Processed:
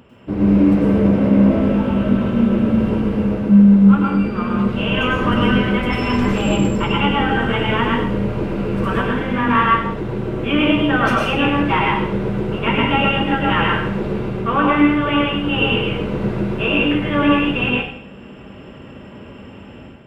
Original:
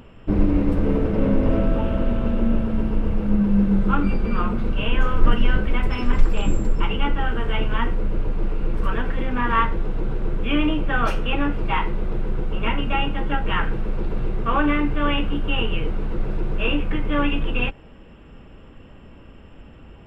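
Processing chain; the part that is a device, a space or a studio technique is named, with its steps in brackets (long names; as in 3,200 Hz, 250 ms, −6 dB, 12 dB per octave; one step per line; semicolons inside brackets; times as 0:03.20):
far laptop microphone (convolution reverb RT60 0.60 s, pre-delay 95 ms, DRR −2 dB; high-pass filter 100 Hz 12 dB per octave; automatic gain control gain up to 7.5 dB)
level −1.5 dB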